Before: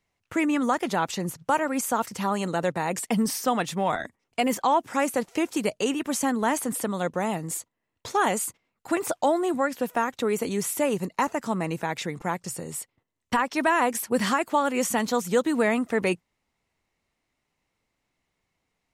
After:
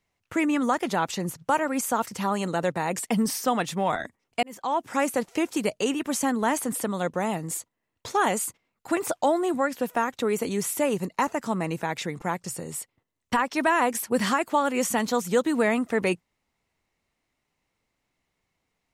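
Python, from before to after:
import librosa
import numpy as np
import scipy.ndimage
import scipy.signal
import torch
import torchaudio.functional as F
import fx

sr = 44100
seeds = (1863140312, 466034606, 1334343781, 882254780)

y = fx.edit(x, sr, fx.fade_in_span(start_s=4.43, length_s=0.5), tone=tone)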